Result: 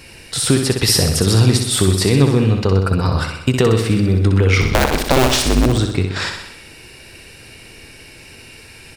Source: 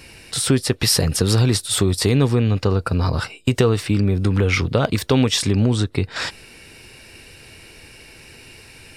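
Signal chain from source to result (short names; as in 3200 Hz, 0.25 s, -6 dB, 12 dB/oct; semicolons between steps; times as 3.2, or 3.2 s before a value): 4.61–5.66 cycle switcher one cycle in 2, inverted; on a send: feedback echo 63 ms, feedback 60%, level -6 dB; on the sum: gain +2 dB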